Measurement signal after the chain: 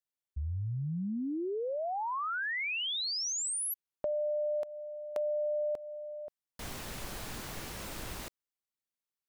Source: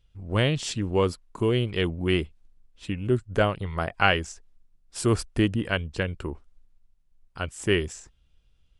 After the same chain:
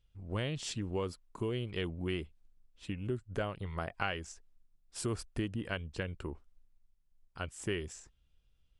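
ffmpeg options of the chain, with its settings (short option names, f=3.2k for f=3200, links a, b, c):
-af "acompressor=threshold=-25dB:ratio=3,volume=-7.5dB"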